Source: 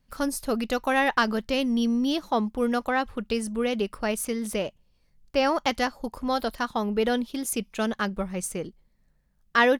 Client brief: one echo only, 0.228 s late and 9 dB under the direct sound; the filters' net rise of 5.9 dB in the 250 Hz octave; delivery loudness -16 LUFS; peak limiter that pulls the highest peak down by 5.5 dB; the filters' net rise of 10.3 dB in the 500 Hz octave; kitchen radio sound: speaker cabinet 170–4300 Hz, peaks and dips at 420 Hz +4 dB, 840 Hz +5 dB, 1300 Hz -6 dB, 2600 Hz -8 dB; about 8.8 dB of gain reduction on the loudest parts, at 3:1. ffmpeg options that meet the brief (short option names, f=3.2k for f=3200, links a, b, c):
-af "equalizer=f=250:t=o:g=5.5,equalizer=f=500:t=o:g=8,acompressor=threshold=-21dB:ratio=3,alimiter=limit=-16.5dB:level=0:latency=1,highpass=170,equalizer=f=420:t=q:w=4:g=4,equalizer=f=840:t=q:w=4:g=5,equalizer=f=1.3k:t=q:w=4:g=-6,equalizer=f=2.6k:t=q:w=4:g=-8,lowpass=f=4.3k:w=0.5412,lowpass=f=4.3k:w=1.3066,aecho=1:1:228:0.355,volume=9.5dB"